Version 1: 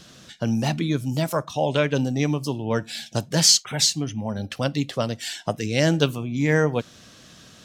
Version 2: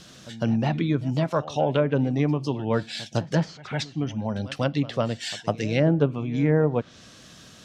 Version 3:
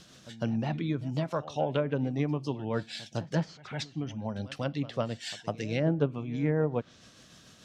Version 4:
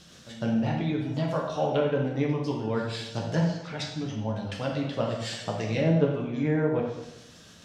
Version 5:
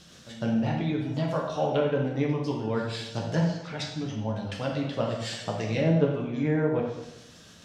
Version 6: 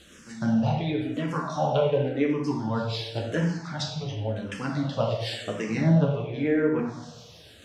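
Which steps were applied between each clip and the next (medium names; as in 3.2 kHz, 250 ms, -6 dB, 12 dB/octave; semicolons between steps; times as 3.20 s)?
low-pass that closes with the level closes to 870 Hz, closed at -15.5 dBFS; pre-echo 155 ms -18 dB
tremolo 6.8 Hz, depth 31%; trim -5.5 dB
plate-style reverb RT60 0.94 s, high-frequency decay 0.85×, DRR -1.5 dB
no audible change
barber-pole phaser -0.92 Hz; trim +4.5 dB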